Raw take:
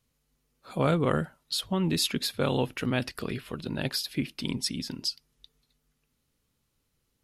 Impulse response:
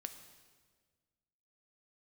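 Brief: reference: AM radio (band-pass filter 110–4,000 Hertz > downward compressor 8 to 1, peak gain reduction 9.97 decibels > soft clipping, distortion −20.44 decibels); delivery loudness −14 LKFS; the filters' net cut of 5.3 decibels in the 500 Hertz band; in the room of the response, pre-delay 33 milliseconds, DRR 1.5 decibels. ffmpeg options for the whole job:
-filter_complex "[0:a]equalizer=frequency=500:width_type=o:gain=-6.5,asplit=2[link_01][link_02];[1:a]atrim=start_sample=2205,adelay=33[link_03];[link_02][link_03]afir=irnorm=-1:irlink=0,volume=2dB[link_04];[link_01][link_04]amix=inputs=2:normalize=0,highpass=110,lowpass=4000,acompressor=threshold=-30dB:ratio=8,asoftclip=threshold=-25dB,volume=22dB"

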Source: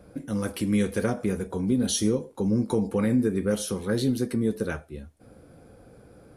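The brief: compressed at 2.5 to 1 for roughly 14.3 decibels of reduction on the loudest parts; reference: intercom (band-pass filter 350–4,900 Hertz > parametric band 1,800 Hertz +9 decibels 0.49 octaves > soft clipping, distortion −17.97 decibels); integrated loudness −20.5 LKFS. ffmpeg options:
ffmpeg -i in.wav -af "acompressor=threshold=-42dB:ratio=2.5,highpass=350,lowpass=4900,equalizer=frequency=1800:width_type=o:width=0.49:gain=9,asoftclip=threshold=-34.5dB,volume=25.5dB" out.wav

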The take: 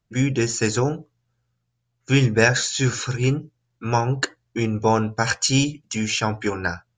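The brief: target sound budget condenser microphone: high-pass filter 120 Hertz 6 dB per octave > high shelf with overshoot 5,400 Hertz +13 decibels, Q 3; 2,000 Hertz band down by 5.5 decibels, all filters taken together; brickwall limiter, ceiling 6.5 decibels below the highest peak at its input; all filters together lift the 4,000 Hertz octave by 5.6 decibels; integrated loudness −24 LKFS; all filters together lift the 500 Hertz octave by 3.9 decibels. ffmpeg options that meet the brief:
ffmpeg -i in.wav -af "equalizer=frequency=500:width_type=o:gain=5.5,equalizer=frequency=2000:width_type=o:gain=-7.5,equalizer=frequency=4000:width_type=o:gain=8,alimiter=limit=-9dB:level=0:latency=1,highpass=frequency=120:poles=1,highshelf=frequency=5400:width_type=q:width=3:gain=13,volume=-10.5dB" out.wav

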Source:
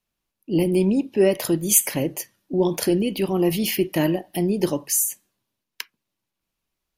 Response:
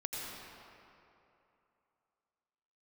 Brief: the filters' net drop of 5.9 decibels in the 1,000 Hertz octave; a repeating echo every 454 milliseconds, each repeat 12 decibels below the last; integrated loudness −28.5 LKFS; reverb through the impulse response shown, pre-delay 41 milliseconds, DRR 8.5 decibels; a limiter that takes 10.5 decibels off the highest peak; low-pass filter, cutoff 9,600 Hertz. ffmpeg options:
-filter_complex "[0:a]lowpass=9600,equalizer=frequency=1000:width_type=o:gain=-8.5,alimiter=limit=-16dB:level=0:latency=1,aecho=1:1:454|908|1362:0.251|0.0628|0.0157,asplit=2[link_01][link_02];[1:a]atrim=start_sample=2205,adelay=41[link_03];[link_02][link_03]afir=irnorm=-1:irlink=0,volume=-11dB[link_04];[link_01][link_04]amix=inputs=2:normalize=0,volume=-3dB"

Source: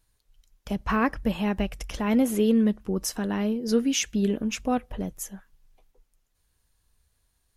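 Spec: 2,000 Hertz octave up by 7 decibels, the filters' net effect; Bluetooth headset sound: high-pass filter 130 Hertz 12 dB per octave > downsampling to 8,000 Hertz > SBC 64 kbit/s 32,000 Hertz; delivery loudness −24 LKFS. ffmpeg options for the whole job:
ffmpeg -i in.wav -af "highpass=130,equalizer=frequency=2000:width_type=o:gain=9,aresample=8000,aresample=44100,volume=2dB" -ar 32000 -c:a sbc -b:a 64k out.sbc

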